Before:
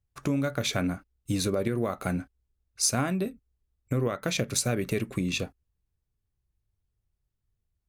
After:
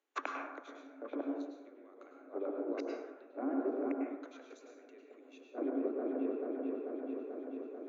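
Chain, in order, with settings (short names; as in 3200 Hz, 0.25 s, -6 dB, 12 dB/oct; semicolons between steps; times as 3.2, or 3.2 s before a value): compressor 6:1, threshold -36 dBFS, peak gain reduction 14.5 dB; high shelf 3300 Hz -5.5 dB; dark delay 0.439 s, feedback 75%, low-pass 700 Hz, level -4.5 dB; flipped gate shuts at -31 dBFS, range -28 dB; treble ducked by the level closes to 2900 Hz, closed at -43 dBFS; steep high-pass 260 Hz 96 dB/oct; bell 5000 Hz -10.5 dB 0.34 oct; plate-style reverb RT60 0.98 s, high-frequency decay 0.45×, pre-delay 90 ms, DRR 0.5 dB; gain +10 dB; MP3 64 kbps 16000 Hz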